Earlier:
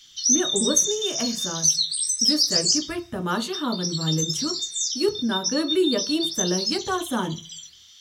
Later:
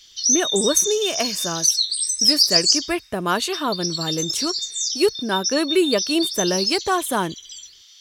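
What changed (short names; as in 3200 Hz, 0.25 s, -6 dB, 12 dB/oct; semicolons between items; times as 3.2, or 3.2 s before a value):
speech +6.5 dB; reverb: off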